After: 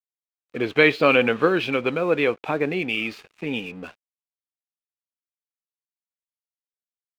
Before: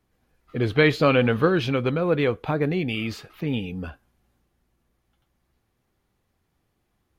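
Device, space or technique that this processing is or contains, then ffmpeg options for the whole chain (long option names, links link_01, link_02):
pocket radio on a weak battery: -af "highpass=260,lowpass=4500,aeval=exprs='sgn(val(0))*max(abs(val(0))-0.00376,0)':channel_layout=same,equalizer=frequency=2500:width_type=o:width=0.33:gain=7,volume=2dB"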